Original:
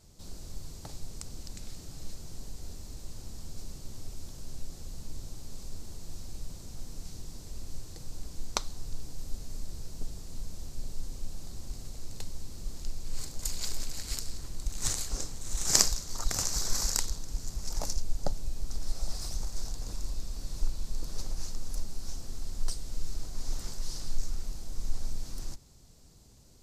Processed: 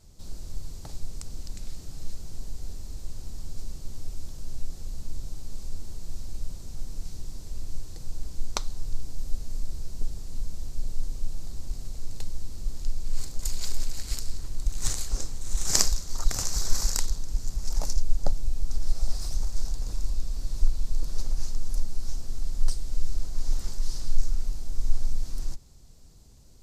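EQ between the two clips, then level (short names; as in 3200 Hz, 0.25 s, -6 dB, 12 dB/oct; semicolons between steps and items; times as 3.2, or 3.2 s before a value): low shelf 61 Hz +9 dB; 0.0 dB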